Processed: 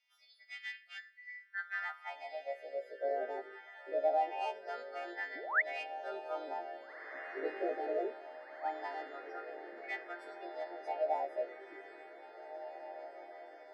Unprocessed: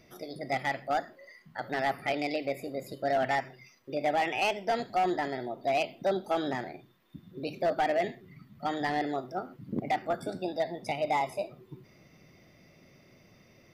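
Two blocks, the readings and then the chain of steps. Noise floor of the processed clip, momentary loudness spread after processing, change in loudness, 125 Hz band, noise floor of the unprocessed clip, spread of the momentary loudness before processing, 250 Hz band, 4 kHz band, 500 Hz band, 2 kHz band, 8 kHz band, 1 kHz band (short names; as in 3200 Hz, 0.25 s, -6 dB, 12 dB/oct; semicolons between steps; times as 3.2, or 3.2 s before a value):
-61 dBFS, 16 LU, -8.0 dB, under -40 dB, -60 dBFS, 15 LU, -15.5 dB, -13.0 dB, -6.5 dB, -4.0 dB, under -15 dB, -8.5 dB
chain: frequency quantiser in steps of 2 st; HPF 170 Hz; notch 1100 Hz, Q 6.5; dynamic EQ 1200 Hz, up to -4 dB, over -42 dBFS, Q 1; high-pass sweep 3000 Hz -> 370 Hz, 0.91–3.53; painted sound rise, 5.35–5.62, 250–2300 Hz -24 dBFS; wah 0.23 Hz 420–1800 Hz, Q 3.8; on a send: diffused feedback echo 1.776 s, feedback 60%, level -11 dB; on the sum: gain -1 dB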